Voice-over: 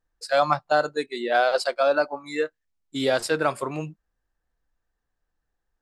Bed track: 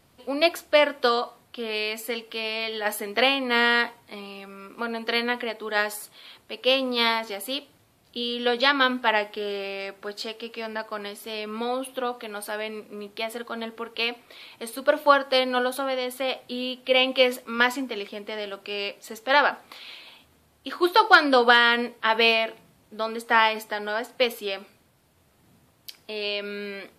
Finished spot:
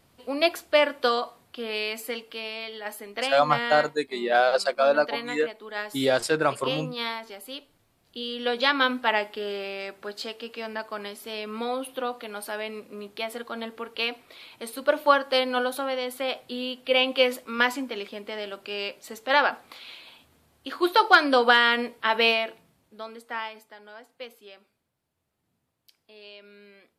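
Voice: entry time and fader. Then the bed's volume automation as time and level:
3.00 s, 0.0 dB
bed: 2.01 s -1.5 dB
2.88 s -8.5 dB
7.50 s -8.5 dB
8.76 s -1.5 dB
22.30 s -1.5 dB
23.73 s -17.5 dB

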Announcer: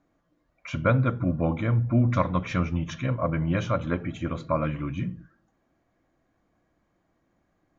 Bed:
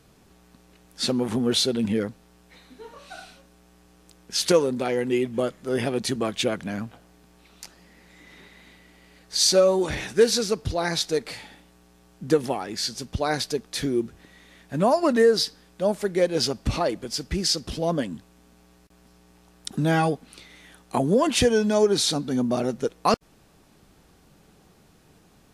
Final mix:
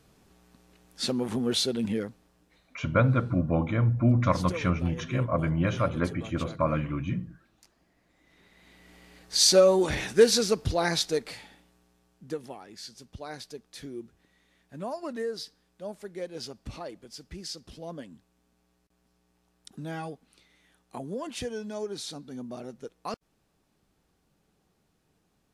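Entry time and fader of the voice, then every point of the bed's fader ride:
2.10 s, -0.5 dB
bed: 1.91 s -4.5 dB
2.87 s -18 dB
8.15 s -18 dB
8.93 s -0.5 dB
10.86 s -0.5 dB
12.42 s -15 dB

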